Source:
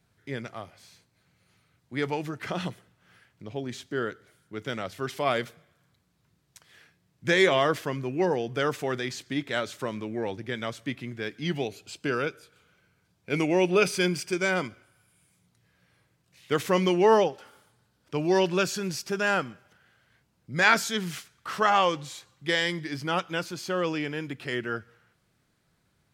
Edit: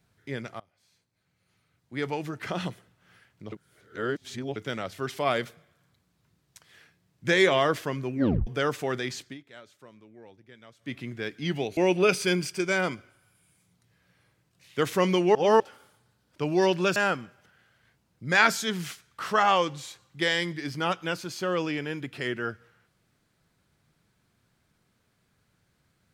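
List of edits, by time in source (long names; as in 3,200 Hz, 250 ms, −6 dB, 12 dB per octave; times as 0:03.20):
0:00.60–0:02.40: fade in, from −24 dB
0:03.52–0:04.56: reverse
0:08.13: tape stop 0.34 s
0:09.21–0:10.96: duck −19 dB, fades 0.17 s
0:11.77–0:13.50: remove
0:17.08–0:17.33: reverse
0:18.69–0:19.23: remove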